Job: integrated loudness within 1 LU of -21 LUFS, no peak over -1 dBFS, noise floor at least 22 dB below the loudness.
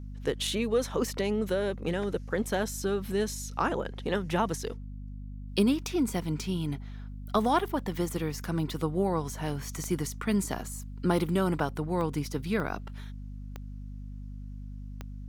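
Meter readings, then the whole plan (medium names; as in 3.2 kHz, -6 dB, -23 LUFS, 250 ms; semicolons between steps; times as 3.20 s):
clicks found 5; hum 50 Hz; highest harmonic 250 Hz; hum level -38 dBFS; loudness -30.5 LUFS; peak level -13.0 dBFS; loudness target -21.0 LUFS
-> de-click; hum notches 50/100/150/200/250 Hz; trim +9.5 dB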